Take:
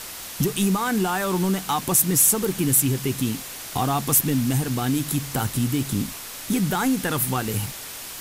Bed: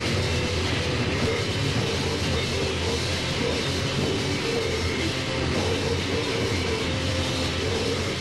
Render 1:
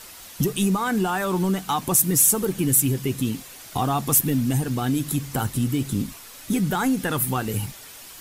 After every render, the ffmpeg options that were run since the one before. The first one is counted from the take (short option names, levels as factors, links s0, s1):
-af "afftdn=nr=8:nf=-36"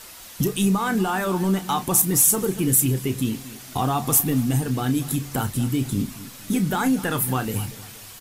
-filter_complex "[0:a]asplit=2[s0][s1];[s1]adelay=31,volume=0.282[s2];[s0][s2]amix=inputs=2:normalize=0,asplit=2[s3][s4];[s4]adelay=234,lowpass=f=3400:p=1,volume=0.15,asplit=2[s5][s6];[s6]adelay=234,lowpass=f=3400:p=1,volume=0.38,asplit=2[s7][s8];[s8]adelay=234,lowpass=f=3400:p=1,volume=0.38[s9];[s3][s5][s7][s9]amix=inputs=4:normalize=0"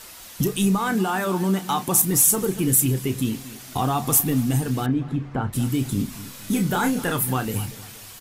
-filter_complex "[0:a]asettb=1/sr,asplit=3[s0][s1][s2];[s0]atrim=end=0.924[s3];[s1]atrim=start=0.92:end=2.05,asetpts=PTS-STARTPTS,afade=t=in:d=0.004:c=qsin,afade=t=out:st=1.126:d=0.004:c=qsin,highpass=98[s4];[s2]atrim=start=2.046[s5];[s3][s4]acrossfade=d=0.004:c1=hsin:c2=qsin[s6];[s6][s5]acrossfade=d=0.004:c1=qsin:c2=hsin,asettb=1/sr,asplit=3[s7][s8][s9];[s7]atrim=end=4.864[s10];[s8]atrim=start=4.86:end=5.53,asetpts=PTS-STARTPTS,afade=t=in:d=0.004:c=qsin,afade=t=out:st=0.666:d=0.004:c=qsin,lowpass=1700[s11];[s9]atrim=start=5.526[s12];[s10][s11]acrossfade=d=0.004:c1=hsin:c2=qsin[s13];[s13][s12]acrossfade=d=0.004:c1=qsin:c2=hsin,asettb=1/sr,asplit=3[s14][s15][s16];[s14]atrim=end=6.104[s17];[s15]atrim=start=6.1:end=7.12,asetpts=PTS-STARTPTS,afade=t=in:d=0.004:c=qsin,afade=t=out:st=1.016:d=0.004:c=qsin,asplit=2[s18][s19];[s19]adelay=29,volume=0.596[s20];[s18][s20]amix=inputs=2:normalize=0,atrim=end_sample=44982[s21];[s16]atrim=start=7.116[s22];[s17][s21]acrossfade=d=0.004:c1=hsin:c2=qsin[s23];[s23][s22]acrossfade=d=0.004:c1=qsin:c2=hsin"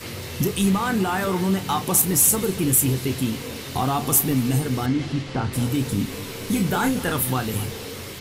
-filter_complex "[1:a]volume=0.335[s0];[0:a][s0]amix=inputs=2:normalize=0"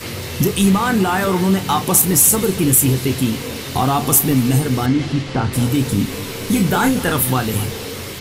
-af "volume=2,alimiter=limit=0.708:level=0:latency=1"